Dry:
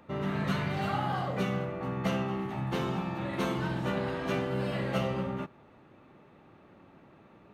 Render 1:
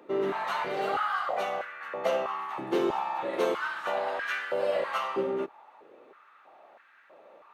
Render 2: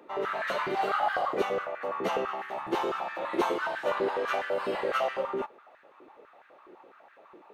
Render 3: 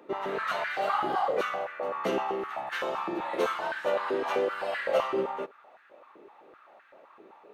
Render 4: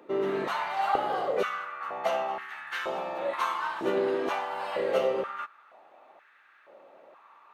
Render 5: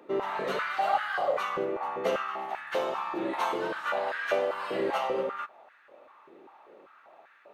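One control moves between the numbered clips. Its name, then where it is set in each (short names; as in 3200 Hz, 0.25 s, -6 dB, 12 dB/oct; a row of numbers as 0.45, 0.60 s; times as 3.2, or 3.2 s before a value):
stepped high-pass, rate: 3.1, 12, 7.8, 2.1, 5.1 Hz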